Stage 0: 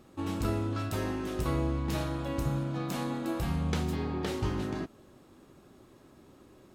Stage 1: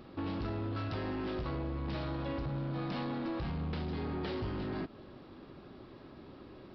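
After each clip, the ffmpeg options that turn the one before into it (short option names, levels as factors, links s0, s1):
-af "acompressor=threshold=0.0178:ratio=6,aresample=11025,asoftclip=type=tanh:threshold=0.015,aresample=44100,volume=1.78"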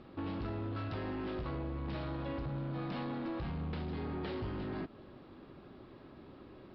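-af "lowpass=4100,volume=0.794"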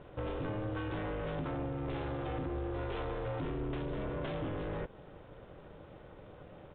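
-af "aeval=exprs='val(0)*sin(2*PI*210*n/s)':c=same,aresample=8000,aresample=44100,volume=1.68"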